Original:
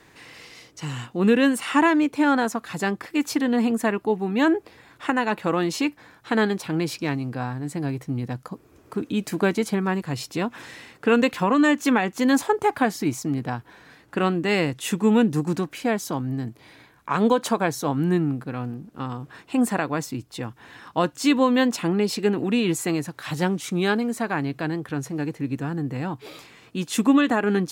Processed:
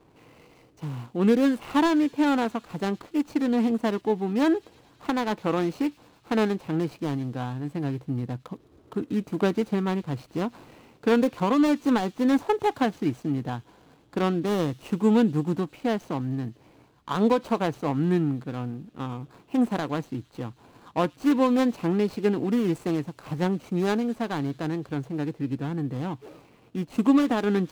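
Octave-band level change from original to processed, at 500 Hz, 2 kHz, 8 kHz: −2.0 dB, −8.5 dB, below −10 dB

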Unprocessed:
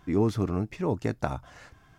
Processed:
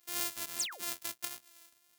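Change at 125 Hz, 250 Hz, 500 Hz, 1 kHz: −35.5, −26.5, −23.5, −12.0 decibels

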